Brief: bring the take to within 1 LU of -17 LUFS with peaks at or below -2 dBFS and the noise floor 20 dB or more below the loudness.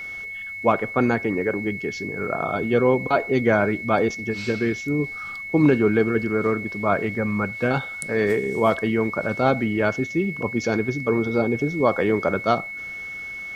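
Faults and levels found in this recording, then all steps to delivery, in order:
ticks 40/s; steady tone 2200 Hz; tone level -31 dBFS; loudness -22.5 LUFS; peak -6.0 dBFS; loudness target -17.0 LUFS
-> de-click; notch 2200 Hz, Q 30; gain +5.5 dB; limiter -2 dBFS

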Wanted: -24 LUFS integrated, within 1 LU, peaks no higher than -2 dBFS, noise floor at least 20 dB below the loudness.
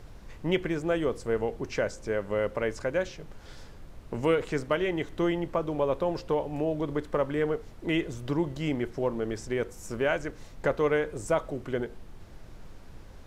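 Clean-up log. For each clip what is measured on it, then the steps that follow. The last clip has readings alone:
noise floor -48 dBFS; noise floor target -50 dBFS; loudness -30.0 LUFS; peak -12.0 dBFS; loudness target -24.0 LUFS
-> noise print and reduce 6 dB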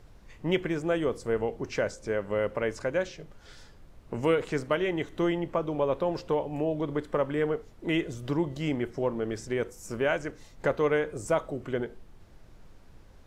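noise floor -53 dBFS; loudness -30.0 LUFS; peak -12.0 dBFS; loudness target -24.0 LUFS
-> gain +6 dB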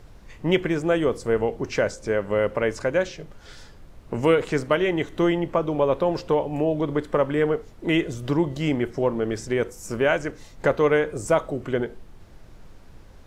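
loudness -24.0 LUFS; peak -6.0 dBFS; noise floor -47 dBFS

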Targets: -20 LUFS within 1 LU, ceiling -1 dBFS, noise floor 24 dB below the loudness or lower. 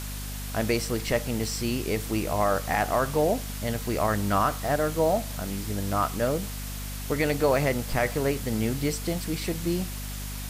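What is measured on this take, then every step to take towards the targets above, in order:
hum 50 Hz; harmonics up to 250 Hz; hum level -33 dBFS; noise floor -35 dBFS; noise floor target -52 dBFS; loudness -27.5 LUFS; peak -11.0 dBFS; loudness target -20.0 LUFS
-> notches 50/100/150/200/250 Hz; noise print and reduce 17 dB; gain +7.5 dB

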